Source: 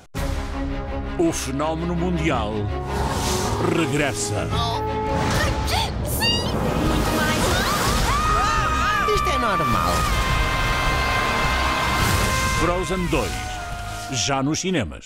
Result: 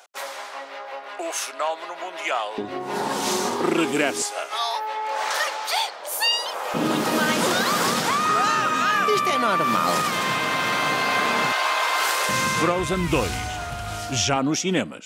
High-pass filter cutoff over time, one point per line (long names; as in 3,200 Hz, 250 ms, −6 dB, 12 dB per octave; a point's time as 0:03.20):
high-pass filter 24 dB per octave
570 Hz
from 0:02.58 210 Hz
from 0:04.22 610 Hz
from 0:06.74 180 Hz
from 0:11.52 490 Hz
from 0:12.29 140 Hz
from 0:12.79 56 Hz
from 0:14.36 160 Hz